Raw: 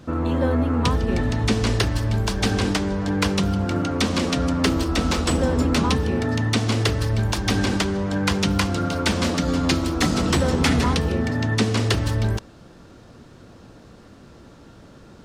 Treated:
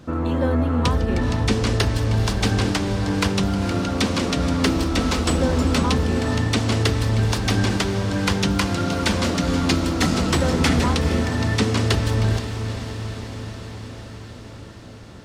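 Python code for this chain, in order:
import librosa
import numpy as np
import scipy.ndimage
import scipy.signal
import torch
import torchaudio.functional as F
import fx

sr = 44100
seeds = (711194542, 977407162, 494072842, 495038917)

y = fx.echo_diffused(x, sr, ms=466, feedback_pct=72, wet_db=-10.5)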